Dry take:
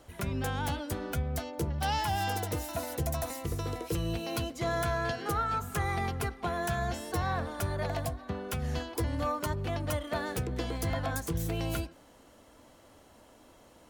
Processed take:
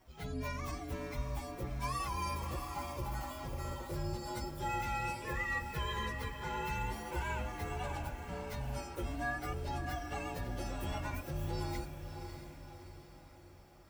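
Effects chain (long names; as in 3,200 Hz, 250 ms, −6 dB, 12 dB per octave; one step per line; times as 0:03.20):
partials spread apart or drawn together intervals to 122%
feedback delay with all-pass diffusion 614 ms, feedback 51%, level −8 dB
level −4.5 dB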